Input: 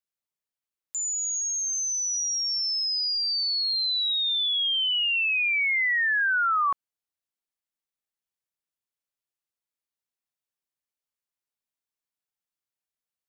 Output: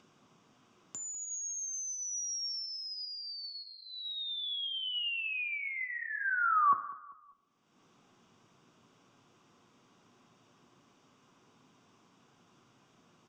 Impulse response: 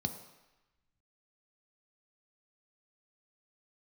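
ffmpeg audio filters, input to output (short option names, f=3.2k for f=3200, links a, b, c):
-filter_complex "[0:a]lowpass=2.9k,acompressor=mode=upward:threshold=-32dB:ratio=2.5,aecho=1:1:197|394|591:0.126|0.0491|0.0191[a];[1:a]atrim=start_sample=2205,asetrate=61740,aresample=44100[b];[a][b]afir=irnorm=-1:irlink=0,volume=-5.5dB"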